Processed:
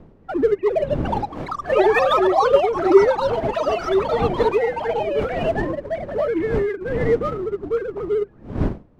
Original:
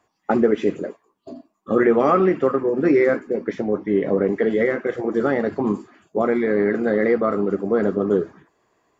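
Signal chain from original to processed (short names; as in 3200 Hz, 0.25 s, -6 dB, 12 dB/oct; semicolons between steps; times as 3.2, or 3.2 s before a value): sine-wave speech; wind noise 270 Hz -30 dBFS; in parallel at -4 dB: crossover distortion -26.5 dBFS; on the sum: echoes that change speed 0.454 s, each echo +6 st, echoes 3; gain -5 dB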